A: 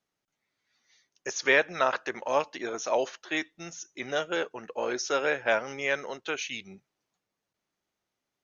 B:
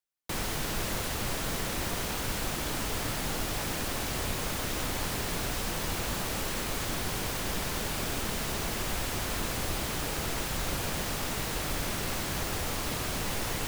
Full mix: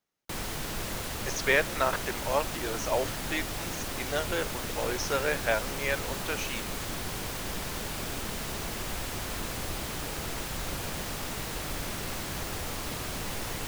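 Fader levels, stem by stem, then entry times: -2.0, -2.5 dB; 0.00, 0.00 s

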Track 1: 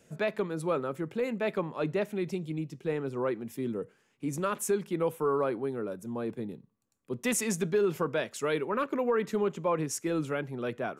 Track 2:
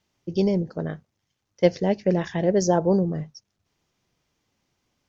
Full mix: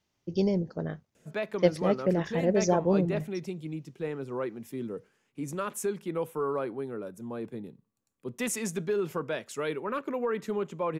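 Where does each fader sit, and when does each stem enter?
-2.5, -4.5 dB; 1.15, 0.00 s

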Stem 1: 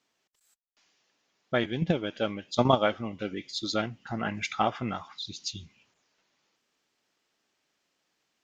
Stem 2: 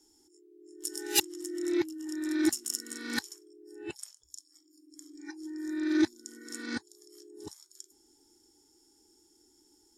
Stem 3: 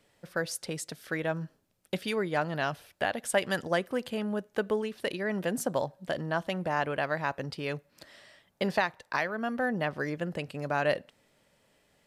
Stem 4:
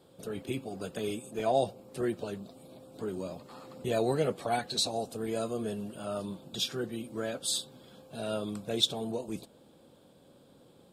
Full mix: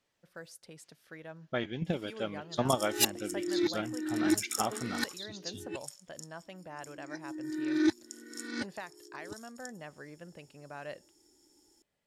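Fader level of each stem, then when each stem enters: -6.5 dB, -1.0 dB, -15.5 dB, off; 0.00 s, 1.85 s, 0.00 s, off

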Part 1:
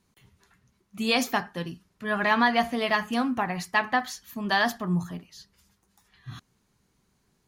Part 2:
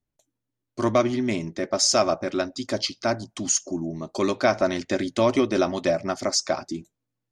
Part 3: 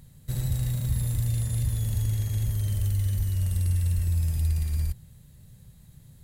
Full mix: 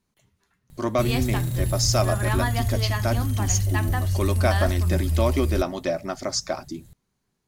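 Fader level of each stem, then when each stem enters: -6.5, -3.0, +2.0 dB; 0.00, 0.00, 0.70 s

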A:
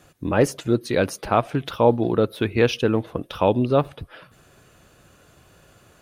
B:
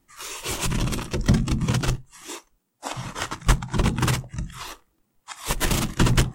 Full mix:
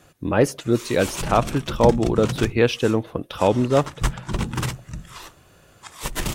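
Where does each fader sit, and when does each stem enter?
+0.5, -3.5 dB; 0.00, 0.55 s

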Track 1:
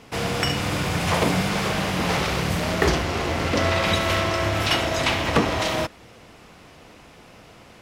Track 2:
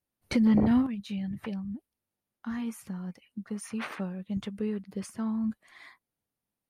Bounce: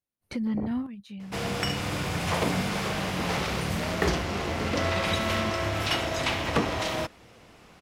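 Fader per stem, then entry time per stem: -5.5, -6.5 dB; 1.20, 0.00 s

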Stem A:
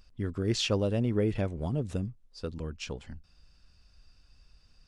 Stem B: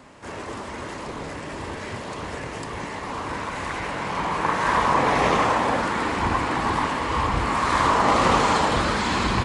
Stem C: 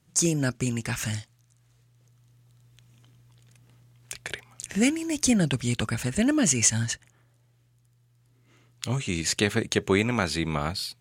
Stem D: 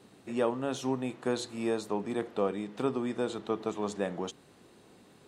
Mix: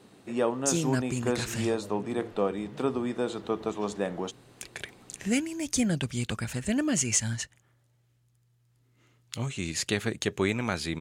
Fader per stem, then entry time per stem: -17.5 dB, off, -4.5 dB, +2.0 dB; 1.00 s, off, 0.50 s, 0.00 s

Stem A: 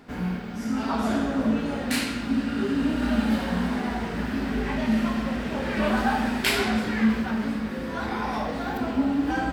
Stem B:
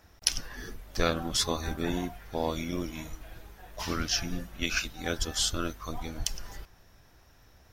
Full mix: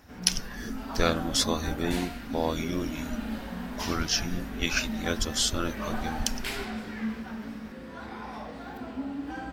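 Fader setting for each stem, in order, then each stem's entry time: -11.0, +2.0 dB; 0.00, 0.00 s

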